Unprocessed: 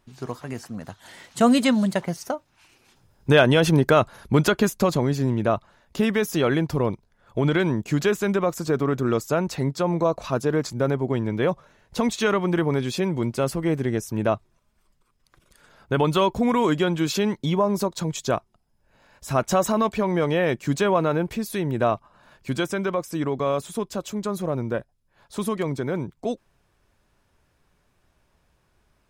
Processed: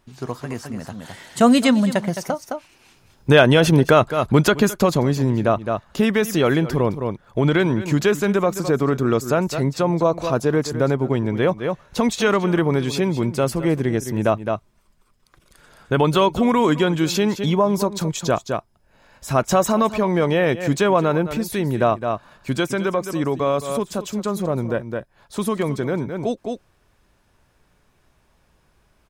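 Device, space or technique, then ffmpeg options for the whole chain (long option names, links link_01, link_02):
ducked delay: -filter_complex "[0:a]asplit=3[link_01][link_02][link_03];[link_02]adelay=213,volume=-4dB[link_04];[link_03]apad=whole_len=1292432[link_05];[link_04][link_05]sidechaincompress=threshold=-34dB:ratio=5:attack=6.1:release=141[link_06];[link_01][link_06]amix=inputs=2:normalize=0,volume=3.5dB"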